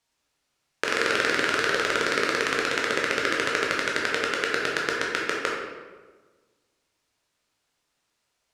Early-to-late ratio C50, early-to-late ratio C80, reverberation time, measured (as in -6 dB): 0.5 dB, 3.5 dB, 1.4 s